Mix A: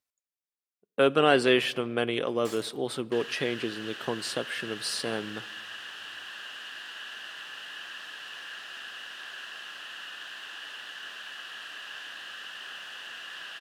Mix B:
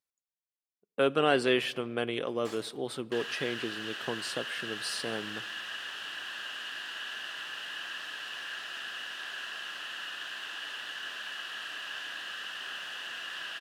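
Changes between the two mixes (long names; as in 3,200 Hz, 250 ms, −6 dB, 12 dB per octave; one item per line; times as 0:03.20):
speech −4.0 dB
first sound: add low-pass filter 3,600 Hz 6 dB per octave
second sound: send +9.5 dB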